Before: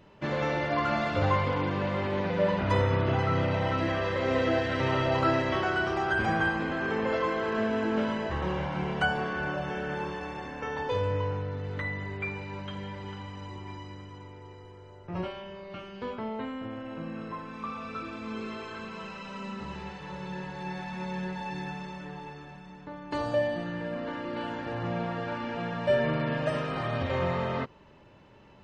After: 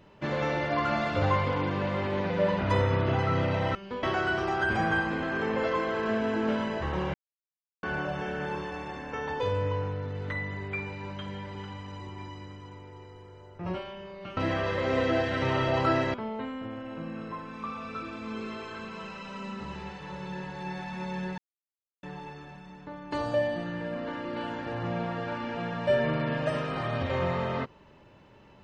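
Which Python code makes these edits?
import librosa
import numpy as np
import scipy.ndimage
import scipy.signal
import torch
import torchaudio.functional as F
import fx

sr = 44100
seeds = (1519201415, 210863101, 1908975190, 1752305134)

y = fx.edit(x, sr, fx.swap(start_s=3.75, length_s=1.77, other_s=15.86, other_length_s=0.28),
    fx.silence(start_s=8.63, length_s=0.69),
    fx.silence(start_s=21.38, length_s=0.65), tone=tone)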